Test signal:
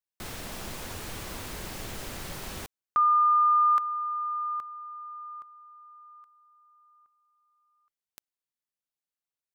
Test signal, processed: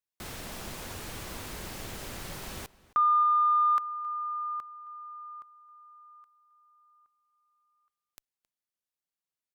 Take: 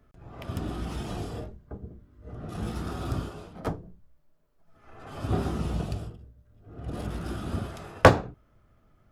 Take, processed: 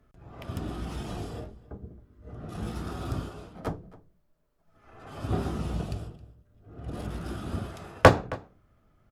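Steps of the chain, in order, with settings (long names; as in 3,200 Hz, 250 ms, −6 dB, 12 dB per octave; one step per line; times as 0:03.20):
harmonic generator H 7 −32 dB, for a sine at −1 dBFS
slap from a distant wall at 46 metres, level −20 dB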